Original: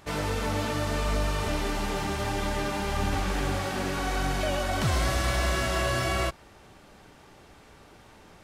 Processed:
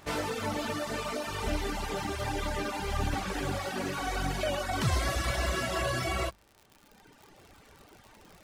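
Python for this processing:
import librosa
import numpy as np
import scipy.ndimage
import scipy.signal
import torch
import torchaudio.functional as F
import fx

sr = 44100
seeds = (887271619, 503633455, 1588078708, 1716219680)

y = fx.hum_notches(x, sr, base_hz=50, count=4)
y = fx.dereverb_blind(y, sr, rt60_s=1.6)
y = fx.dmg_crackle(y, sr, seeds[0], per_s=100.0, level_db=-42.0)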